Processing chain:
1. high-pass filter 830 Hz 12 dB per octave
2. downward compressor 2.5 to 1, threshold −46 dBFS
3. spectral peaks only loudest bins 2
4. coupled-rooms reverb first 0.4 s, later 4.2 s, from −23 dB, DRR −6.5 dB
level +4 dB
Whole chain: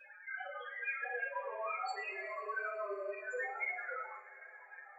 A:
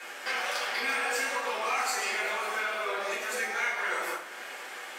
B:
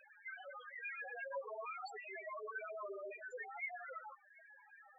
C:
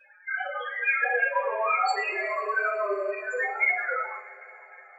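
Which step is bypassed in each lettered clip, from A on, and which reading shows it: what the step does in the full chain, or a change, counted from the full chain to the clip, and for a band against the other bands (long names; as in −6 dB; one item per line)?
3, 4 kHz band +14.0 dB
4, change in momentary loudness spread +3 LU
2, average gain reduction 10.0 dB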